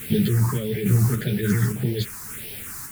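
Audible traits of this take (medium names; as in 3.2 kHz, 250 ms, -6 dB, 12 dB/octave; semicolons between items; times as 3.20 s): a quantiser's noise floor 6-bit, dither triangular; phasing stages 4, 1.7 Hz, lowest notch 510–1200 Hz; random-step tremolo; a shimmering, thickened sound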